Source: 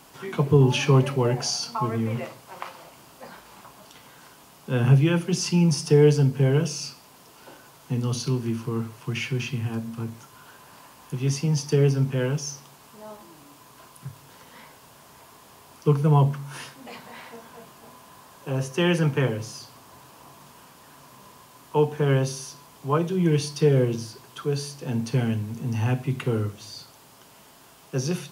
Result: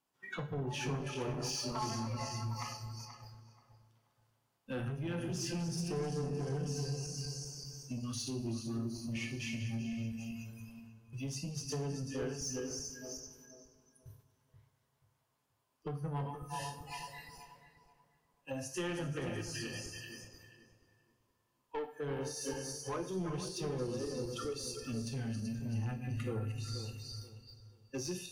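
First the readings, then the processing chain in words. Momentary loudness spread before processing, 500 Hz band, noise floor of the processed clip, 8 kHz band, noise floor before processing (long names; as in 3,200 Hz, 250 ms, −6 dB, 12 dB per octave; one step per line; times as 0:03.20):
21 LU, −15.5 dB, −79 dBFS, −7.5 dB, −52 dBFS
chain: feedback delay that plays each chunk backwards 191 ms, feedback 72%, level −6.5 dB
noise gate −39 dBFS, range −8 dB
noise reduction from a noise print of the clip's start 24 dB
dynamic equaliser 2,900 Hz, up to −4 dB, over −45 dBFS, Q 2.4
downward compressor 2.5 to 1, threshold −35 dBFS, peak gain reduction 15.5 dB
soft clipping −30.5 dBFS, distortion −12 dB
on a send: feedback echo with a low-pass in the loop 481 ms, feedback 27%, low-pass 1,500 Hz, level −9 dB
on the sum: coupled-rooms reverb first 0.48 s, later 2.4 s, from −18 dB, DRR 7 dB
level −2 dB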